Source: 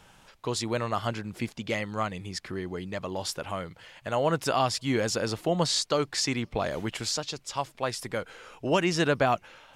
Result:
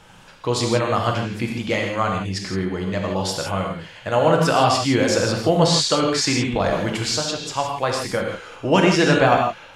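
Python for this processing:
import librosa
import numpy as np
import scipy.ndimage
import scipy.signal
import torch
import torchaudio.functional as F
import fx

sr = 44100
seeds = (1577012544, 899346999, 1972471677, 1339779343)

y = fx.high_shelf(x, sr, hz=11000.0, db=-9.5)
y = fx.rev_gated(y, sr, seeds[0], gate_ms=190, shape='flat', drr_db=0.5)
y = y * 10.0 ** (6.5 / 20.0)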